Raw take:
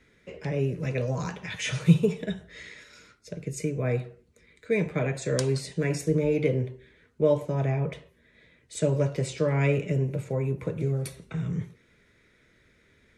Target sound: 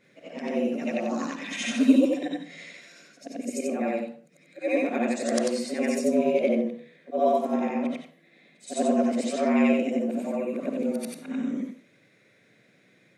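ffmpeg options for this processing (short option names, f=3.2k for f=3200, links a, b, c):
-af "afftfilt=real='re':imag='-im':win_size=8192:overlap=0.75,afreqshift=100,volume=5.5dB"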